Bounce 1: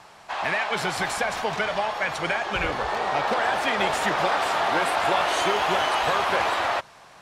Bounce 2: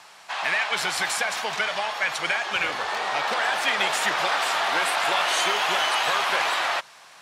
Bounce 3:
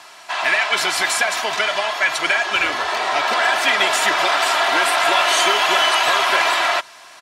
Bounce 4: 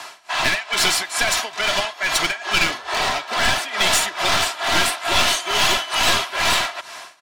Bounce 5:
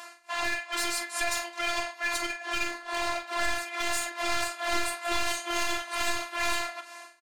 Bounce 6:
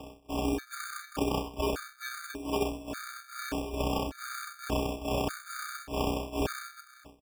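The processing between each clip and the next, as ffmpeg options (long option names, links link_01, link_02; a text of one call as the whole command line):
ffmpeg -i in.wav -af "highpass=130,tiltshelf=frequency=970:gain=-7,volume=-1.5dB" out.wav
ffmpeg -i in.wav -af "aecho=1:1:3:0.55,volume=5.5dB" out.wav
ffmpeg -i in.wav -filter_complex "[0:a]tremolo=f=2.3:d=0.92,aeval=exprs='clip(val(0),-1,0.0794)':channel_layout=same,acrossover=split=250|3000[link_01][link_02][link_03];[link_02]acompressor=threshold=-33dB:ratio=2[link_04];[link_01][link_04][link_03]amix=inputs=3:normalize=0,volume=7.5dB" out.wav
ffmpeg -i in.wav -filter_complex "[0:a]alimiter=limit=-8dB:level=0:latency=1:release=145,afftfilt=real='hypot(re,im)*cos(PI*b)':imag='0':win_size=512:overlap=0.75,asplit=2[link_01][link_02];[link_02]aecho=0:1:26|44:0.266|0.299[link_03];[link_01][link_03]amix=inputs=2:normalize=0,volume=-6.5dB" out.wav
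ffmpeg -i in.wav -af "asuperpass=centerf=3300:order=12:qfactor=0.52,acrusher=samples=22:mix=1:aa=0.000001,afftfilt=real='re*gt(sin(2*PI*0.85*pts/sr)*(1-2*mod(floor(b*sr/1024/1200),2)),0)':imag='im*gt(sin(2*PI*0.85*pts/sr)*(1-2*mod(floor(b*sr/1024/1200),2)),0)':win_size=1024:overlap=0.75,volume=3dB" out.wav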